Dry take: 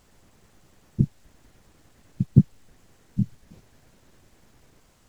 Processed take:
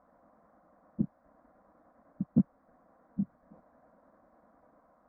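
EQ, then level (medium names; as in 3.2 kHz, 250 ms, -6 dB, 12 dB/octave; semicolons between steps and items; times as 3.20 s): high-pass 270 Hz 6 dB/octave; resonant low-pass 900 Hz, resonance Q 6; static phaser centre 590 Hz, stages 8; 0.0 dB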